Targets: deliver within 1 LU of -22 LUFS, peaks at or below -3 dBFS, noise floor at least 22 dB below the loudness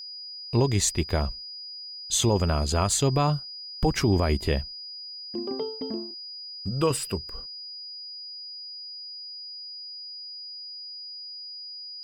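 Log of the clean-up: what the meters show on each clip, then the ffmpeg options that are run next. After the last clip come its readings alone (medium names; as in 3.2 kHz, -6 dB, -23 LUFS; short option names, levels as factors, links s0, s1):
steady tone 4.9 kHz; tone level -37 dBFS; loudness -29.0 LUFS; peak level -11.5 dBFS; loudness target -22.0 LUFS
-> -af "bandreject=f=4900:w=30"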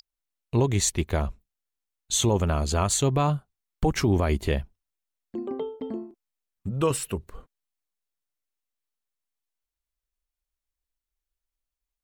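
steady tone not found; loudness -26.0 LUFS; peak level -12.0 dBFS; loudness target -22.0 LUFS
-> -af "volume=1.58"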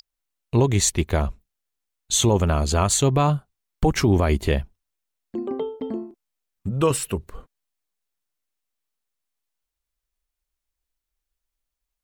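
loudness -22.5 LUFS; peak level -8.0 dBFS; noise floor -84 dBFS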